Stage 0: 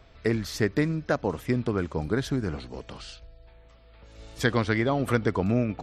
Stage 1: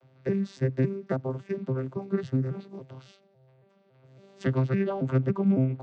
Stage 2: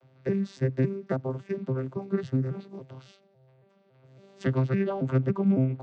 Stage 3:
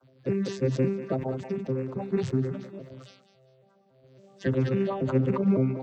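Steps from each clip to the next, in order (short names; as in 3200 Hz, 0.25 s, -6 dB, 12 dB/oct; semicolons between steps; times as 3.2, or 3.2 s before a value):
arpeggiated vocoder bare fifth, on C3, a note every 0.278 s
nothing audible
bin magnitudes rounded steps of 30 dB; thinning echo 0.195 s, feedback 31%, high-pass 580 Hz, level -9.5 dB; sustainer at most 76 dB/s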